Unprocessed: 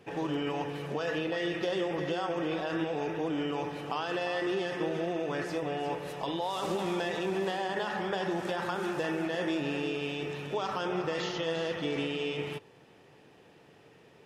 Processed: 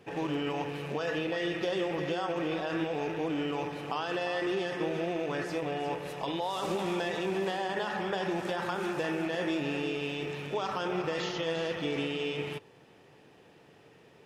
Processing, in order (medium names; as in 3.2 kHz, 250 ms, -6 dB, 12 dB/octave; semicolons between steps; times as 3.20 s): rattle on loud lows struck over -41 dBFS, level -37 dBFS